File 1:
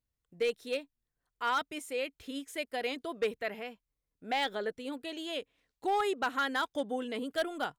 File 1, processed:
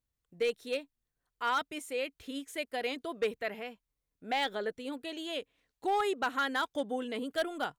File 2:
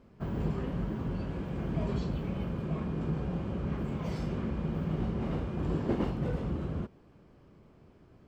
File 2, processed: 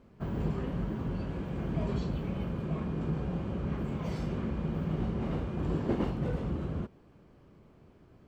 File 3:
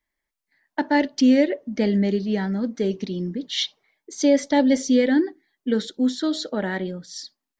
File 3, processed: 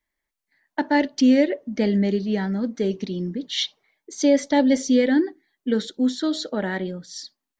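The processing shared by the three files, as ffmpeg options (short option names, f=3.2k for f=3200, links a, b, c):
-af "bandreject=f=5.1k:w=30"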